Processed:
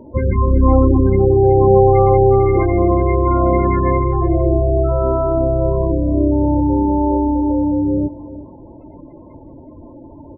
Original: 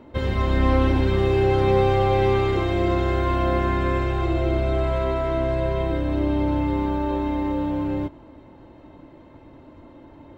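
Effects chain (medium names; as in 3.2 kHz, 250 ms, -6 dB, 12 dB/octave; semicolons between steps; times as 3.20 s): spectral gate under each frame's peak -15 dB strong; delay 374 ms -16 dB; trim +8 dB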